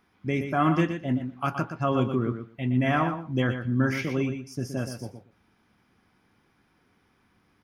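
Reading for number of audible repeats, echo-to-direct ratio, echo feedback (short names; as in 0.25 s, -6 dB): 2, -8.5 dB, 15%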